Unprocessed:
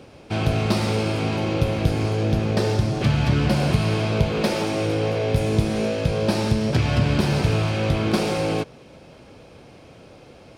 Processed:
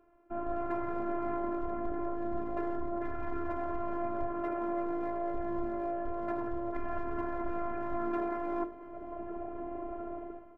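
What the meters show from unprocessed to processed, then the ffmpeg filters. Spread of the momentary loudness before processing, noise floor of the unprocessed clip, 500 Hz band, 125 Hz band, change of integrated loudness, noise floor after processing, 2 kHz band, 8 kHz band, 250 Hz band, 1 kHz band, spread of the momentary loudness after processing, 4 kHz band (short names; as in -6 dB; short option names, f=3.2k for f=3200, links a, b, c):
3 LU, -47 dBFS, -11.0 dB, -30.5 dB, -14.5 dB, -48 dBFS, -18.0 dB, under -40 dB, -12.0 dB, -6.0 dB, 6 LU, under -35 dB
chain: -af "dynaudnorm=f=180:g=5:m=16dB,lowpass=f=1.5k:w=0.5412,lowpass=f=1.5k:w=1.3066,asoftclip=type=hard:threshold=-10dB,tiltshelf=f=870:g=-3.5,afftdn=nr=12:nf=-32,areverse,acompressor=threshold=-27dB:ratio=5,areverse,afftfilt=real='hypot(re,im)*cos(PI*b)':imag='0':win_size=512:overlap=0.75,bandreject=f=50:t=h:w=6,bandreject=f=100:t=h:w=6,bandreject=f=150:t=h:w=6,bandreject=f=200:t=h:w=6,bandreject=f=250:t=h:w=6,bandreject=f=300:t=h:w=6,bandreject=f=350:t=h:w=6,bandreject=f=400:t=h:w=6,bandreject=f=450:t=h:w=6,aecho=1:1:506:0.141"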